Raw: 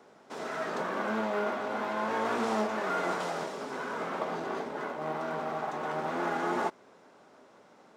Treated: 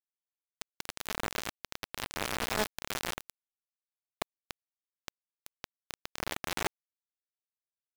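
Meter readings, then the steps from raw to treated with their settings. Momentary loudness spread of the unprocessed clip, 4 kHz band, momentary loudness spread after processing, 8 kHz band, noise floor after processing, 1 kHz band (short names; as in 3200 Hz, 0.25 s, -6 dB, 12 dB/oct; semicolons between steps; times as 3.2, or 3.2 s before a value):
6 LU, +5.5 dB, 19 LU, +8.0 dB, under -85 dBFS, -10.0 dB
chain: bit-crush 4-bit; gain -1.5 dB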